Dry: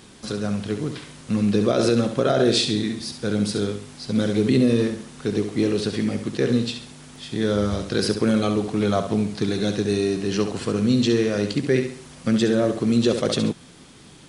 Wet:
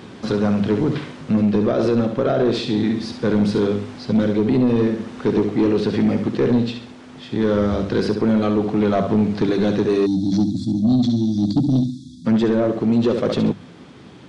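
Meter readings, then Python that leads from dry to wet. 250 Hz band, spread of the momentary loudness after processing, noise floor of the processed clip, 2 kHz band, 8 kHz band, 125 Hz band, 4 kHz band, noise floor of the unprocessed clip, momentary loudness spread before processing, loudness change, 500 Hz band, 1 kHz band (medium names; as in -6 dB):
+4.0 dB, 5 LU, -41 dBFS, -1.0 dB, under -10 dB, +3.0 dB, -5.0 dB, -46 dBFS, 10 LU, +3.0 dB, +2.5 dB, +3.0 dB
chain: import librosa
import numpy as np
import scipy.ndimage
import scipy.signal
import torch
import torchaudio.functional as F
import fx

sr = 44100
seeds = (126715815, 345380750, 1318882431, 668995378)

y = fx.spec_erase(x, sr, start_s=10.06, length_s=2.19, low_hz=340.0, high_hz=3300.0)
y = scipy.signal.sosfilt(scipy.signal.butter(2, 87.0, 'highpass', fs=sr, output='sos'), y)
y = fx.high_shelf(y, sr, hz=6600.0, db=5.5)
y = fx.hum_notches(y, sr, base_hz=50, count=4)
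y = fx.rider(y, sr, range_db=4, speed_s=0.5)
y = 10.0 ** (-18.0 / 20.0) * np.tanh(y / 10.0 ** (-18.0 / 20.0))
y = fx.spacing_loss(y, sr, db_at_10k=29)
y = F.gain(torch.from_numpy(y), 8.0).numpy()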